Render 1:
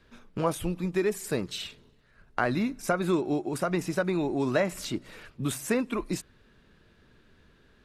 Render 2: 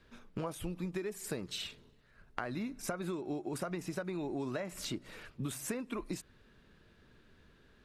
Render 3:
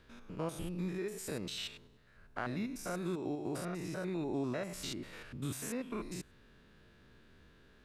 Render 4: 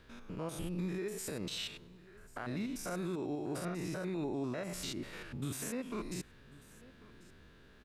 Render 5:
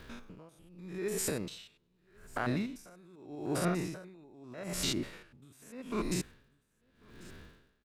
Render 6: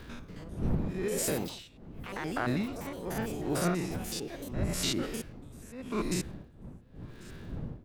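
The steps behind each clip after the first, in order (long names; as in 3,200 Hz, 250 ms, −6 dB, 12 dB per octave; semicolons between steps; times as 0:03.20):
downward compressor 12 to 1, threshold −31 dBFS, peak gain reduction 12 dB; level −3 dB
spectrum averaged block by block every 100 ms; level +2.5 dB
brickwall limiter −32.5 dBFS, peak gain reduction 10 dB; single-tap delay 1,092 ms −21 dB; level +2.5 dB
surface crackle 180 per second −59 dBFS; tremolo with a sine in dB 0.82 Hz, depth 28 dB; level +8.5 dB
wind on the microphone 180 Hz −43 dBFS; delay with pitch and tempo change per echo 285 ms, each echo +4 semitones, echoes 3, each echo −6 dB; level +2 dB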